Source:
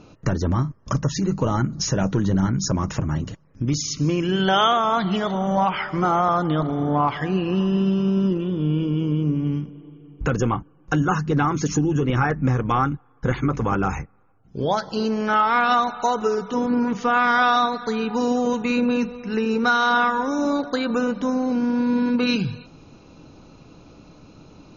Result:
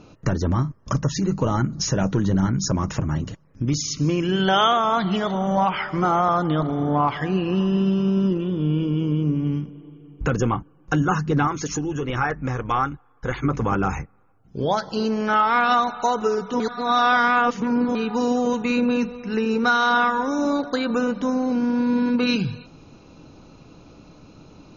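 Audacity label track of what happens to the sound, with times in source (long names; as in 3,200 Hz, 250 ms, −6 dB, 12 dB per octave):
11.470000	13.440000	parametric band 180 Hz −8.5 dB 2 octaves
16.600000	17.950000	reverse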